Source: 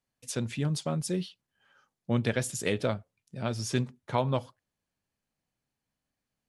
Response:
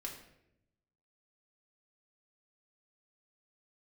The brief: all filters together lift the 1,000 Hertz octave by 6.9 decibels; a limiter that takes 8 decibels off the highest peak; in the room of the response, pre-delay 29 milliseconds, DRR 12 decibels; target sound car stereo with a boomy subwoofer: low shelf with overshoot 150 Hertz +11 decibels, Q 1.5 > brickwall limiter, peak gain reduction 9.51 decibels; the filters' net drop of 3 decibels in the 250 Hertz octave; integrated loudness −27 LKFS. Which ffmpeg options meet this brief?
-filter_complex "[0:a]equalizer=frequency=250:width_type=o:gain=-8.5,equalizer=frequency=1000:width_type=o:gain=9,alimiter=limit=-17.5dB:level=0:latency=1,asplit=2[link_01][link_02];[1:a]atrim=start_sample=2205,adelay=29[link_03];[link_02][link_03]afir=irnorm=-1:irlink=0,volume=-10.5dB[link_04];[link_01][link_04]amix=inputs=2:normalize=0,lowshelf=frequency=150:width_type=q:width=1.5:gain=11,volume=6dB,alimiter=limit=-17.5dB:level=0:latency=1"

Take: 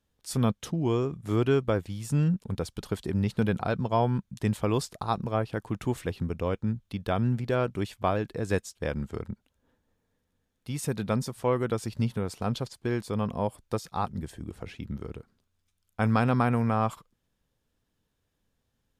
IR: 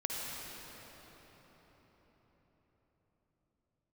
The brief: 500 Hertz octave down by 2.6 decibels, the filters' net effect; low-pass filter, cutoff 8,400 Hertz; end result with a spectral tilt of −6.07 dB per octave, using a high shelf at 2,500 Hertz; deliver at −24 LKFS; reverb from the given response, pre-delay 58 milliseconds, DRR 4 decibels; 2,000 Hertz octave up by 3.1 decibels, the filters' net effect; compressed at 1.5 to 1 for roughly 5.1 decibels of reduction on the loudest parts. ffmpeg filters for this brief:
-filter_complex "[0:a]lowpass=8400,equalizer=frequency=500:width_type=o:gain=-3.5,equalizer=frequency=2000:width_type=o:gain=3,highshelf=frequency=2500:gain=3.5,acompressor=threshold=-35dB:ratio=1.5,asplit=2[link_01][link_02];[1:a]atrim=start_sample=2205,adelay=58[link_03];[link_02][link_03]afir=irnorm=-1:irlink=0,volume=-8dB[link_04];[link_01][link_04]amix=inputs=2:normalize=0,volume=9dB"

